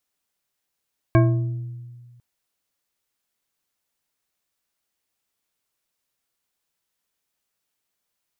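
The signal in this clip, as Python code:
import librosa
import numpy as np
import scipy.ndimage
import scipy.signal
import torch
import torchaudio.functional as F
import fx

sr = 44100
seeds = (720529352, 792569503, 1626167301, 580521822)

y = fx.strike_glass(sr, length_s=1.05, level_db=-12, body='bar', hz=121.0, decay_s=1.73, tilt_db=3.5, modes=6)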